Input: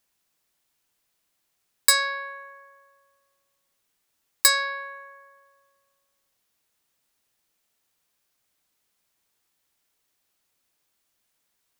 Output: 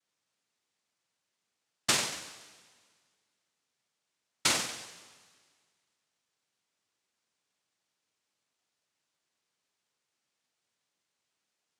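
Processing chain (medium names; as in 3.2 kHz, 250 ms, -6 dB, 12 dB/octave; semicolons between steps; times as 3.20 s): flutter echo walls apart 8.1 m, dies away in 0.79 s; noise-vocoded speech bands 1; trim -7.5 dB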